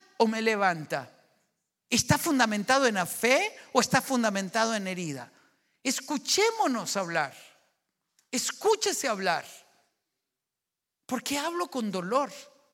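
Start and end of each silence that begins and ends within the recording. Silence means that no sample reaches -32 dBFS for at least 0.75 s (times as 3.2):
1.03–1.92
7.27–8.33
9.41–11.09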